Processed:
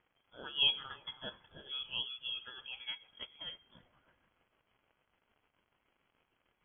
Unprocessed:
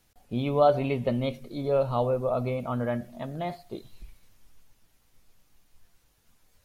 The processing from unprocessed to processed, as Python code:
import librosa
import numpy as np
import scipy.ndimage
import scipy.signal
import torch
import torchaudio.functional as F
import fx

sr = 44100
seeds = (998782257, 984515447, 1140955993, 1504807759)

y = fx.rotary_switch(x, sr, hz=1.2, then_hz=6.7, switch_at_s=1.64)
y = fx.dmg_crackle(y, sr, seeds[0], per_s=130.0, level_db=-51.0)
y = scipy.signal.sosfilt(scipy.signal.butter(8, 600.0, 'highpass', fs=sr, output='sos'), y)
y = fx.notch(y, sr, hz=2100.0, q=21.0)
y = fx.echo_wet_highpass(y, sr, ms=326, feedback_pct=32, hz=3000.0, wet_db=-12.5)
y = fx.freq_invert(y, sr, carrier_hz=3900)
y = fx.high_shelf(y, sr, hz=2700.0, db=-11.0)